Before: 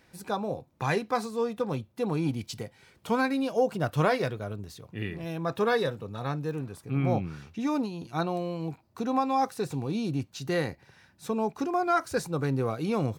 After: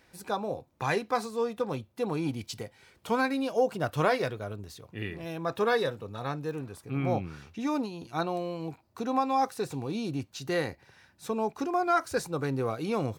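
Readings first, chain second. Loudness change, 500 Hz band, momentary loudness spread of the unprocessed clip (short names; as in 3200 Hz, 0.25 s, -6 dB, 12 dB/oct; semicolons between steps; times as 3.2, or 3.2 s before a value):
-1.0 dB, -0.5 dB, 11 LU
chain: bell 160 Hz -5 dB 1.3 oct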